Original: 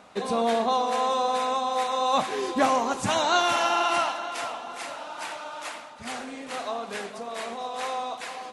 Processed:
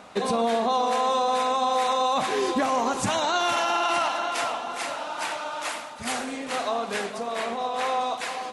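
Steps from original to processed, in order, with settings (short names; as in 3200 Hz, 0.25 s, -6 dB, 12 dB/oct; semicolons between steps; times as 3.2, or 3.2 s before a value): 7.34–8.01 tone controls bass +1 dB, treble -5 dB; limiter -20.5 dBFS, peak gain reduction 10 dB; 5.69–6.37 high shelf 10000 Hz +11 dB; gain +5 dB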